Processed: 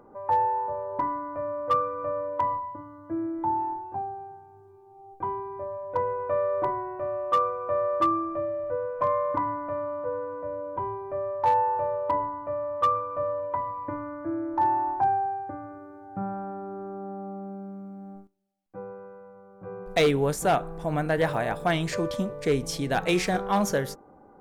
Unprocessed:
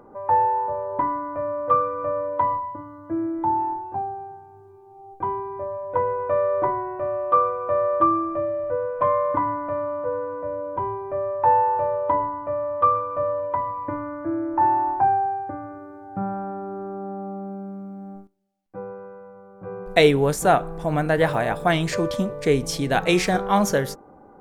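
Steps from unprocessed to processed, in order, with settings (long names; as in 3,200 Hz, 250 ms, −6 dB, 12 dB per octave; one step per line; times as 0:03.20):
hard clipping −11.5 dBFS, distortion −21 dB
level −4.5 dB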